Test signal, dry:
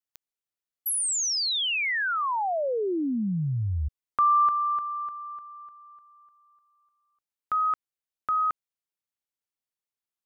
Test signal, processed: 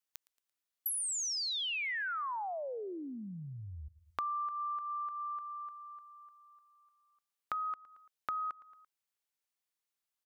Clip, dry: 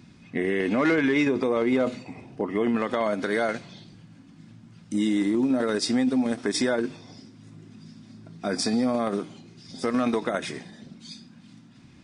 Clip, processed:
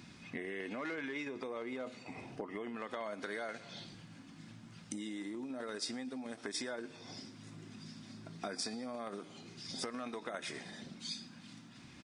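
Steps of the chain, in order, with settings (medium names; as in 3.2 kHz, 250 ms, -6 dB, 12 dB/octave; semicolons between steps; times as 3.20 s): on a send: feedback delay 113 ms, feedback 41%, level -23 dB; on the sum: compression 6:1, threshold -38 dBFS; bass shelf 440 Hz -9 dB; trim +2.5 dB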